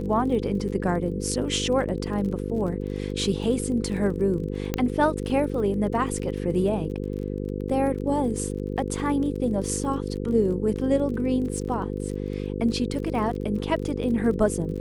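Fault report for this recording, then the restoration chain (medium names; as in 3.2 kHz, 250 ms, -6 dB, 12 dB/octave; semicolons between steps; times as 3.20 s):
buzz 50 Hz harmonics 10 -30 dBFS
crackle 30 per s -34 dBFS
4.74 s: pop -10 dBFS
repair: de-click; de-hum 50 Hz, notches 10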